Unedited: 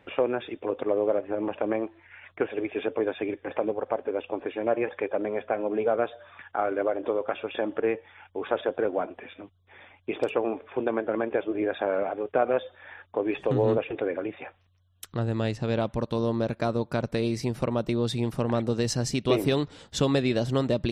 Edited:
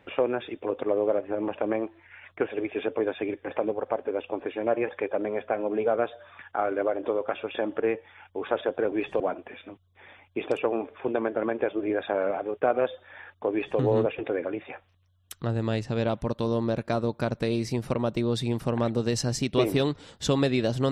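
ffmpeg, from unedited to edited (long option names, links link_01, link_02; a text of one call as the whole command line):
ffmpeg -i in.wav -filter_complex "[0:a]asplit=3[link_01][link_02][link_03];[link_01]atrim=end=8.922[link_04];[link_02]atrim=start=13.228:end=13.512[link_05];[link_03]atrim=start=8.918[link_06];[link_04][link_05]acrossfade=duration=0.004:curve1=hsin:curve2=hsin[link_07];[link_07][link_06]acrossfade=duration=0.004:curve1=hsin:curve2=hsin" out.wav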